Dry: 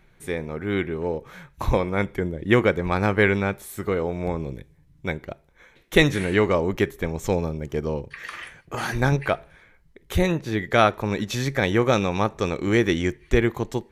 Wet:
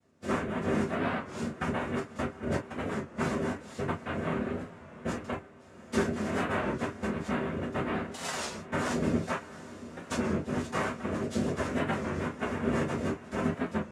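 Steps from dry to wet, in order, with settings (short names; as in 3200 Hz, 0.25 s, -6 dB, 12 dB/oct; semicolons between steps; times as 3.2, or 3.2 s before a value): tracing distortion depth 0.23 ms; gate -46 dBFS, range -16 dB; tilt shelf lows +7.5 dB; compressor 8:1, threshold -32 dBFS, peak gain reduction 25 dB; 1.98–4.09 step gate ".x.x.xx.xxxxx" 100 bpm -60 dB; noise vocoder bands 3; diffused feedback echo 0.785 s, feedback 44%, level -15.5 dB; non-linear reverb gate 80 ms falling, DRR -8 dB; record warp 33 1/3 rpm, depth 100 cents; gain -3 dB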